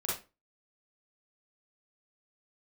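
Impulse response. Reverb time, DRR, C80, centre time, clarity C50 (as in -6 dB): 0.30 s, -7.0 dB, 10.5 dB, 45 ms, 1.5 dB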